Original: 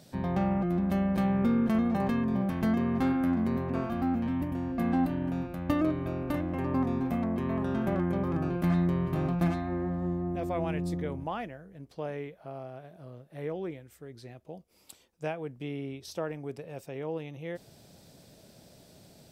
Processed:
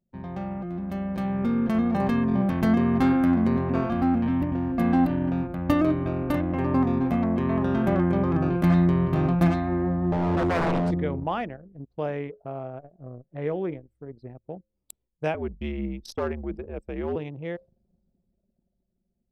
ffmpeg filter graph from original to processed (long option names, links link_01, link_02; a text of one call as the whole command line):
ffmpeg -i in.wav -filter_complex "[0:a]asettb=1/sr,asplit=3[link_01][link_02][link_03];[link_01]atrim=end=10.124[link_04];[link_02]atrim=start=10.12:end=10.91,asetpts=PTS-STARTPTS,afade=type=in:duration=0.004:curve=qsin,afade=type=out:start_time=0.786:duration=0.004:curve=qsin,asuperstop=centerf=1500:order=20:qfactor=3.6,tiltshelf=frequency=1400:gain=6.5,aeval=exprs='0.0531*(abs(mod(val(0)/0.0531+3,4)-2)-1)':channel_layout=same[link_05];[link_03]atrim=start=10.906[link_06];[link_04][link_05]acrossfade=duration=0.004:curve1=hsin:curve2=qsin[link_07];[link_07][link_06]acrossfade=duration=0.004:curve1=qsin:curve2=hsin,asettb=1/sr,asplit=3[link_08][link_09][link_10];[link_08]atrim=end=15.344[link_11];[link_09]atrim=start=15.34:end=17.16,asetpts=PTS-STARTPTS,afade=type=in:duration=0.004:curve=qsin,afade=type=out:start_time=1.816:duration=0.004:curve=qsin,afreqshift=-74,asoftclip=type=hard:threshold=-28dB[link_12];[link_10]atrim=start=17.156[link_13];[link_11][link_12]acrossfade=duration=0.004:curve1=hsin:curve2=qsin[link_14];[link_14][link_13]acrossfade=duration=0.004:curve1=qsin:curve2=hsin,bandreject=frequency=105.8:width_type=h:width=4,bandreject=frequency=211.6:width_type=h:width=4,bandreject=frequency=317.4:width_type=h:width=4,bandreject=frequency=423.2:width_type=h:width=4,bandreject=frequency=529:width_type=h:width=4,anlmdn=0.158,dynaudnorm=framelen=200:gausssize=17:maxgain=12dB,volume=-5dB" out.wav